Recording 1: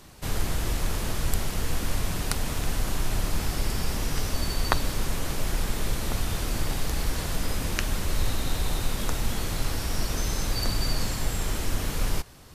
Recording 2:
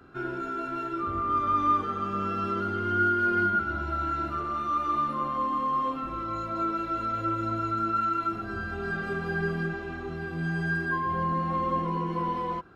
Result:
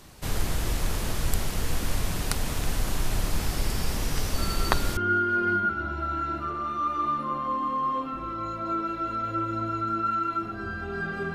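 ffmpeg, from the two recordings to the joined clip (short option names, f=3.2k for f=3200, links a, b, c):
-filter_complex "[1:a]asplit=2[a][b];[0:a]apad=whole_dur=11.34,atrim=end=11.34,atrim=end=4.972[c];[b]atrim=start=2.868:end=9.24[d];[a]atrim=start=2.28:end=2.87,asetpts=PTS-STARTPTS,volume=-7dB,afade=t=in:d=0.004:c=hsin,afade=t=out:st=0.586:d=0.004:c=hsin,adelay=4380[e];[c][d]acrossfade=d=0.004:c1=hsin:c2=hsin[f];[f][e]amix=inputs=2:normalize=0"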